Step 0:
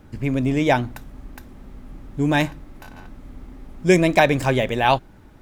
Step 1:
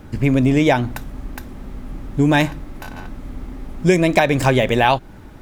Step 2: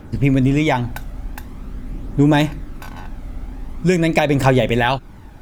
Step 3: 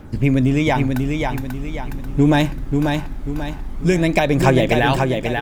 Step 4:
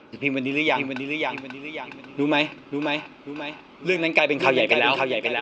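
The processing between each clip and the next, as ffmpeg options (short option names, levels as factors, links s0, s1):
-af "acompressor=threshold=0.112:ratio=6,volume=2.51"
-af "aphaser=in_gain=1:out_gain=1:delay=1.5:decay=0.35:speed=0.45:type=triangular,volume=0.841"
-af "aecho=1:1:539|1078|1617|2156|2695:0.596|0.244|0.1|0.0411|0.0168,volume=0.891"
-af "highpass=450,equalizer=f=750:t=q:w=4:g=-7,equalizer=f=1800:t=q:w=4:g=-8,equalizer=f=2600:t=q:w=4:g=9,lowpass=f=4700:w=0.5412,lowpass=f=4700:w=1.3066"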